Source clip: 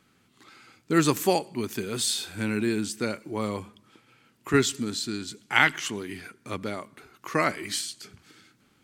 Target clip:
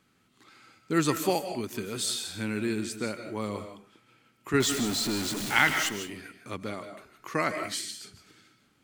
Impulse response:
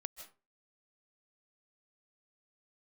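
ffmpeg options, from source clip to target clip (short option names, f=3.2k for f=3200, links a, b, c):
-filter_complex "[0:a]asettb=1/sr,asplit=3[a][b][c];[a]atrim=end=4.604[d];[b]atrim=start=4.6:end=5.89,asetpts=PTS-STARTPTS,afade=t=in:d=0.004:c=qsin,afade=t=out:st=1.286:d=0.004:c=qsin,aeval=exprs='val(0)+0.5*0.0562*sgn(val(0))':c=same[e];[c]atrim=start=5.886[f];[d][e]acrossfade=d=0.004:c1=hsin:c2=qsin[g];[g][f]acrossfade=d=0.004:c1=qsin:c2=hsin[h];[1:a]atrim=start_sample=2205[i];[h][i]afir=irnorm=-1:irlink=0"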